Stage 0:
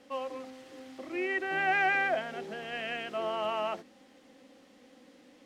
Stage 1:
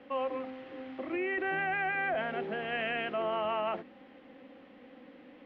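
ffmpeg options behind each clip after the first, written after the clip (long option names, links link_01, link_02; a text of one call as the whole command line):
ffmpeg -i in.wav -filter_complex "[0:a]lowpass=frequency=2900:width=0.5412,lowpass=frequency=2900:width=1.3066,acrossover=split=170[link_01][link_02];[link_02]alimiter=level_in=6dB:limit=-24dB:level=0:latency=1:release=10,volume=-6dB[link_03];[link_01][link_03]amix=inputs=2:normalize=0,volume=4.5dB" out.wav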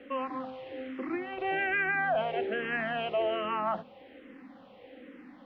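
ffmpeg -i in.wav -filter_complex "[0:a]asplit=2[link_01][link_02];[link_02]afreqshift=-1.2[link_03];[link_01][link_03]amix=inputs=2:normalize=1,volume=5.5dB" out.wav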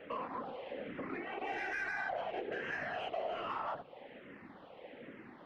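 ffmpeg -i in.wav -filter_complex "[0:a]asplit=2[link_01][link_02];[link_02]highpass=frequency=720:poles=1,volume=12dB,asoftclip=type=tanh:threshold=-19dB[link_03];[link_01][link_03]amix=inputs=2:normalize=0,lowpass=frequency=2200:poles=1,volume=-6dB,afftfilt=real='hypot(re,im)*cos(2*PI*random(0))':imag='hypot(re,im)*sin(2*PI*random(1))':win_size=512:overlap=0.75,acompressor=threshold=-43dB:ratio=2,volume=2dB" out.wav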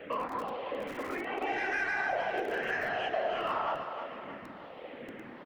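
ffmpeg -i in.wav -filter_complex "[0:a]acrossover=split=250[link_01][link_02];[link_01]aeval=exprs='(mod(335*val(0)+1,2)-1)/335':channel_layout=same[link_03];[link_02]aecho=1:1:313|626|939|1252|1565|1878:0.398|0.191|0.0917|0.044|0.0211|0.0101[link_04];[link_03][link_04]amix=inputs=2:normalize=0,volume=6dB" out.wav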